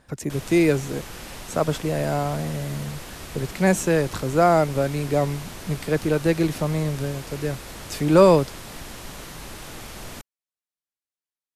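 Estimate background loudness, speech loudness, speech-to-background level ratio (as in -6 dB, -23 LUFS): -38.0 LUFS, -22.5 LUFS, 15.5 dB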